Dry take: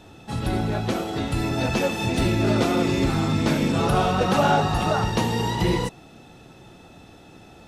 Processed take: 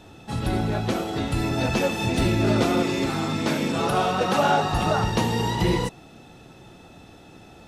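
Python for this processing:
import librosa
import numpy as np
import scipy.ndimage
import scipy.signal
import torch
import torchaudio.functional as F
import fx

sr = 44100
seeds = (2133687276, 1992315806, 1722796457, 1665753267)

y = fx.highpass(x, sr, hz=250.0, slope=6, at=(2.82, 4.73))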